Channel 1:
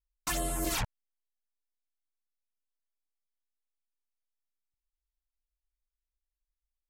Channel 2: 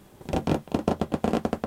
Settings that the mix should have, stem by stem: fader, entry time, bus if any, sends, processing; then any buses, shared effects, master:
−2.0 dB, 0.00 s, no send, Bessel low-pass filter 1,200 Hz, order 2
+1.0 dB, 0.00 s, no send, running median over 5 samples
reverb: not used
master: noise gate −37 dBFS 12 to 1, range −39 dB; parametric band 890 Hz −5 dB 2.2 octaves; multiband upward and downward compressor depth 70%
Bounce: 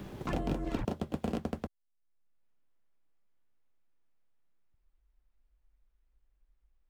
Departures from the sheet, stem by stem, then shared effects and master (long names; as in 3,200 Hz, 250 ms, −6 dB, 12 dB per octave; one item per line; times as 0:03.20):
stem 2 +1.0 dB → −7.5 dB
master: missing noise gate −37 dBFS 12 to 1, range −39 dB